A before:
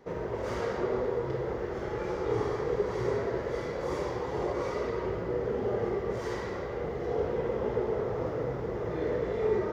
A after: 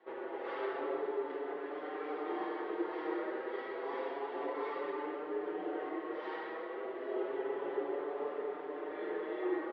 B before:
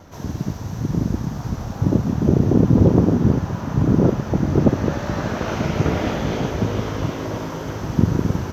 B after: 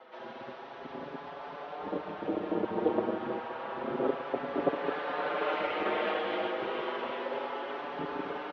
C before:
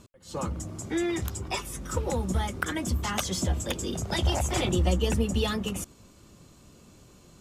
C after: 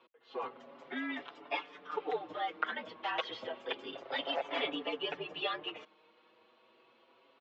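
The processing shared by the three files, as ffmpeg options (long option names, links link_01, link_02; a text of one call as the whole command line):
ffmpeg -i in.wav -filter_complex "[0:a]highpass=frequency=480:width_type=q:width=0.5412,highpass=frequency=480:width_type=q:width=1.307,lowpass=frequency=3600:width_type=q:width=0.5176,lowpass=frequency=3600:width_type=q:width=0.7071,lowpass=frequency=3600:width_type=q:width=1.932,afreqshift=-70,asplit=2[link_01][link_02];[link_02]adelay=5.8,afreqshift=0.3[link_03];[link_01][link_03]amix=inputs=2:normalize=1" out.wav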